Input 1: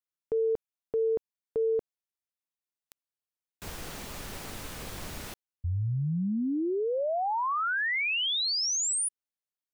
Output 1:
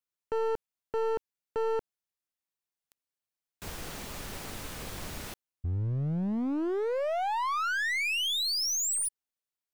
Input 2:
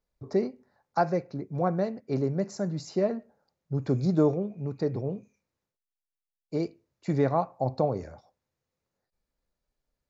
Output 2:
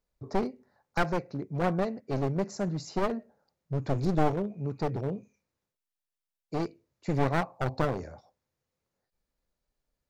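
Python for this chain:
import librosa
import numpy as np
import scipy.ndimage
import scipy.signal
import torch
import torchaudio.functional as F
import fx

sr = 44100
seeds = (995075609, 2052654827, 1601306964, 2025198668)

y = np.minimum(x, 2.0 * 10.0 ** (-28.0 / 20.0) - x)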